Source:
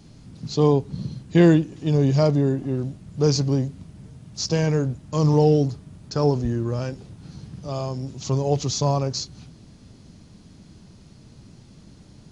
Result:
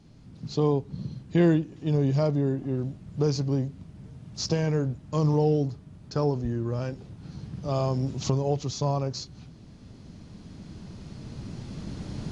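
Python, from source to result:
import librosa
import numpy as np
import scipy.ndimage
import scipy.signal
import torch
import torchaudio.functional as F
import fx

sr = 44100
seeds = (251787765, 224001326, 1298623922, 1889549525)

y = fx.recorder_agc(x, sr, target_db=-8.5, rise_db_per_s=5.4, max_gain_db=30)
y = fx.lowpass(y, sr, hz=3800.0, slope=6)
y = y * librosa.db_to_amplitude(-6.0)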